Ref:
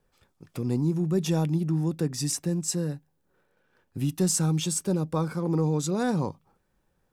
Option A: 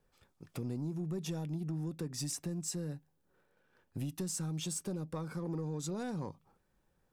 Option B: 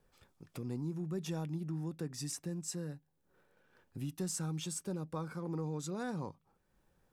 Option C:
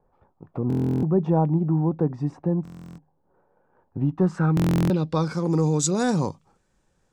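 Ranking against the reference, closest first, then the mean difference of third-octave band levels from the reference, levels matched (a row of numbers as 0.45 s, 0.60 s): B, A, C; 1.5 dB, 2.5 dB, 6.5 dB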